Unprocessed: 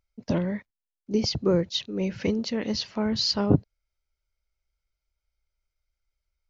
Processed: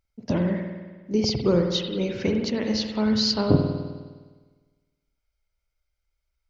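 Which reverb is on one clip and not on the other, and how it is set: spring tank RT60 1.4 s, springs 51 ms, chirp 50 ms, DRR 3 dB; gain +1 dB

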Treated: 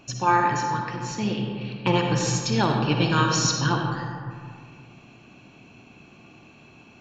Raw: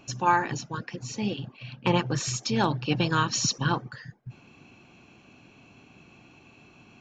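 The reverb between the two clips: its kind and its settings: digital reverb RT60 2.1 s, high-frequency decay 0.45×, pre-delay 20 ms, DRR 1.5 dB; gain +1.5 dB

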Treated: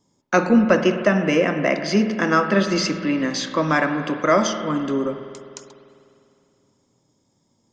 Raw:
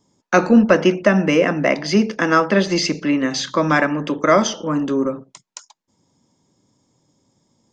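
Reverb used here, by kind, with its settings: spring tank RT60 2.6 s, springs 50 ms, chirp 70 ms, DRR 7.5 dB; gain -3 dB

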